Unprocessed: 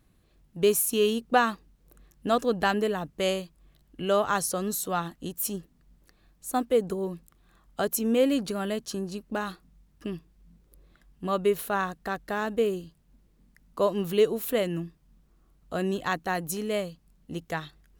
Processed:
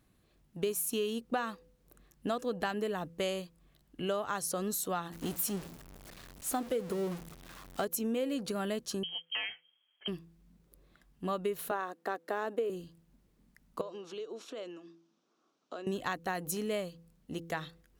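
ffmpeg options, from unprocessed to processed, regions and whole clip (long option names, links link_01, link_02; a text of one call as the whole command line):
ffmpeg -i in.wav -filter_complex "[0:a]asettb=1/sr,asplit=3[link_01][link_02][link_03];[link_01]atrim=end=5.124[link_04];[link_02]atrim=start=5.12:end=7.85,asetpts=PTS-STARTPTS,afade=type=in:duration=0.004:curve=qsin,afade=type=out:start_time=2.726:duration=0.004:curve=qsin,aeval=exprs='val(0)+0.5*0.0211*sgn(val(0))':channel_layout=same,agate=range=-33dB:threshold=-35dB:ratio=3:release=100:detection=peak[link_05];[link_03]atrim=start=7.846[link_06];[link_04][link_05]acrossfade=duration=0.004:curve1=hsin:curve2=qsin[link_07];[link_07][link_06]acrossfade=duration=0.004:curve1=qsin:curve2=hsin,asettb=1/sr,asplit=3[link_08][link_09][link_10];[link_08]atrim=end=9.034[link_11];[link_09]atrim=start=9.03:end=10.08,asetpts=PTS-STARTPTS,afade=type=in:duration=0.004:curve=qsin,afade=type=out:start_time=1.046:duration=0.004:curve=qsin,aeval=exprs='0.0596*(abs(mod(val(0)/0.0596+3,4)-2)-1)':channel_layout=same,highpass=200,lowpass=frequency=2900:width_type=q:width=0.5098,lowpass=frequency=2900:width_type=q:width=0.6013,lowpass=frequency=2900:width_type=q:width=0.9,lowpass=frequency=2900:width_type=q:width=2.563,afreqshift=-3400[link_12];[link_10]atrim=start=10.076[link_13];[link_11][link_12]acrossfade=duration=0.004:curve1=hsin:curve2=qsin[link_14];[link_14][link_13]acrossfade=duration=0.004:curve1=qsin:curve2=hsin,asettb=1/sr,asplit=3[link_15][link_16][link_17];[link_15]atrim=end=11.714[link_18];[link_16]atrim=start=11.71:end=12.7,asetpts=PTS-STARTPTS,afade=type=in:duration=0.004:curve=qsin,afade=type=out:start_time=0.986:duration=0.004:curve=qsin,highpass=frequency=290:width=0.5412,highpass=frequency=290:width=1.3066,tiltshelf=frequency=1300:gain=4.5[link_19];[link_17]atrim=start=12.696[link_20];[link_18][link_19]acrossfade=duration=0.004:curve1=hsin:curve2=qsin[link_21];[link_21][link_20]acrossfade=duration=0.004:curve1=qsin:curve2=hsin,asettb=1/sr,asplit=3[link_22][link_23][link_24];[link_22]atrim=end=13.814[link_25];[link_23]atrim=start=13.81:end=15.87,asetpts=PTS-STARTPTS,afade=type=in:duration=0.004:curve=qsin,afade=type=out:start_time=2.056:duration=0.004:curve=qsin,acompressor=threshold=-34dB:ratio=20:attack=3.2:release=140:knee=1:detection=peak,highpass=frequency=270:width=0.5412,highpass=frequency=270:width=1.3066,equalizer=frequency=1300:width_type=q:width=4:gain=3,equalizer=frequency=1900:width_type=q:width=4:gain=-7,equalizer=frequency=3600:width_type=q:width=4:gain=3,equalizer=frequency=5800:width_type=q:width=4:gain=6,lowpass=frequency=6600:width=0.5412,lowpass=frequency=6600:width=1.3066[link_26];[link_24]atrim=start=15.866[link_27];[link_25][link_26]acrossfade=duration=0.004:curve1=hsin:curve2=qsin[link_28];[link_28][link_27]acrossfade=duration=0.004:curve1=qsin:curve2=hsin,lowshelf=frequency=65:gain=-9.5,bandreject=frequency=167:width_type=h:width=4,bandreject=frequency=334:width_type=h:width=4,bandreject=frequency=501:width_type=h:width=4,acompressor=threshold=-28dB:ratio=6,volume=-2dB" out.wav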